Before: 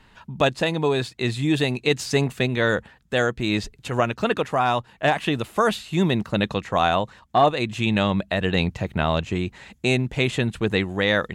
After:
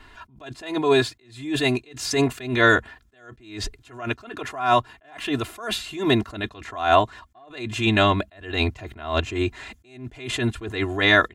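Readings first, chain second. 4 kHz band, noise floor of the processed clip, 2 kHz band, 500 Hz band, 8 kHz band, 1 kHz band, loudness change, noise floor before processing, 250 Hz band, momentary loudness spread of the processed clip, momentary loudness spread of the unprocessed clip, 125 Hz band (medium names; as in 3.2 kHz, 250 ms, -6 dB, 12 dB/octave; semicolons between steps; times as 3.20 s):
+0.5 dB, -57 dBFS, +1.5 dB, -2.0 dB, +1.5 dB, -1.0 dB, -0.5 dB, -55 dBFS, -2.0 dB, 18 LU, 5 LU, -4.0 dB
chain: peaking EQ 1.4 kHz +3.5 dB 1.1 oct; comb 2.9 ms, depth 99%; attacks held to a fixed rise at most 110 dB/s; trim +1.5 dB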